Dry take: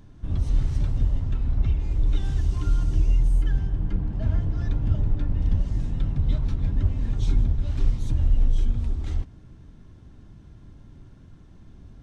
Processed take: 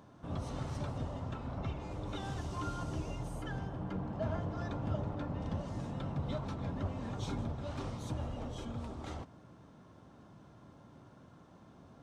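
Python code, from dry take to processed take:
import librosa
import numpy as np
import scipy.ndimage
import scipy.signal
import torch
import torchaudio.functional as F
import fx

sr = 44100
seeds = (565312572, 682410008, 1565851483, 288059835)

y = scipy.signal.sosfilt(scipy.signal.butter(2, 160.0, 'highpass', fs=sr, output='sos'), x)
y = fx.band_shelf(y, sr, hz=820.0, db=8.5, octaves=1.7)
y = F.gain(torch.from_numpy(y), -3.5).numpy()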